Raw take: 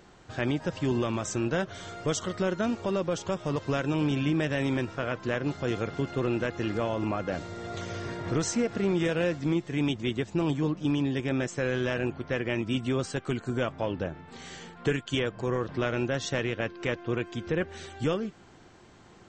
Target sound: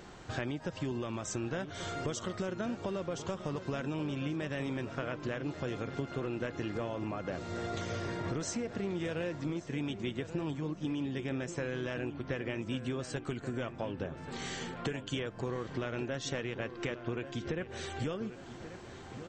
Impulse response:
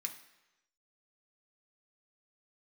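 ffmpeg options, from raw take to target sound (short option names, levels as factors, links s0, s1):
-filter_complex "[0:a]acompressor=threshold=0.0126:ratio=6,asplit=2[s0][s1];[s1]adelay=1135,lowpass=f=2400:p=1,volume=0.266,asplit=2[s2][s3];[s3]adelay=1135,lowpass=f=2400:p=1,volume=0.51,asplit=2[s4][s5];[s5]adelay=1135,lowpass=f=2400:p=1,volume=0.51,asplit=2[s6][s7];[s7]adelay=1135,lowpass=f=2400:p=1,volume=0.51,asplit=2[s8][s9];[s9]adelay=1135,lowpass=f=2400:p=1,volume=0.51[s10];[s0][s2][s4][s6][s8][s10]amix=inputs=6:normalize=0,volume=1.58"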